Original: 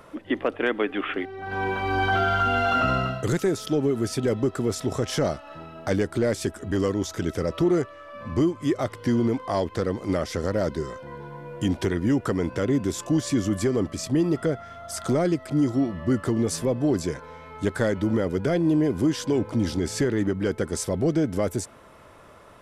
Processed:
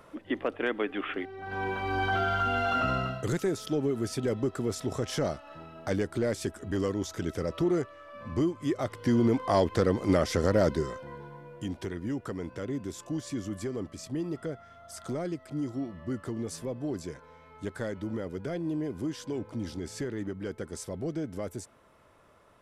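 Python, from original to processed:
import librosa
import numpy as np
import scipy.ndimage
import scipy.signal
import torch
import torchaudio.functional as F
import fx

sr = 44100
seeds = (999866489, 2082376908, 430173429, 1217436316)

y = fx.gain(x, sr, db=fx.line((8.75, -5.5), (9.5, 1.0), (10.68, 1.0), (11.67, -11.0)))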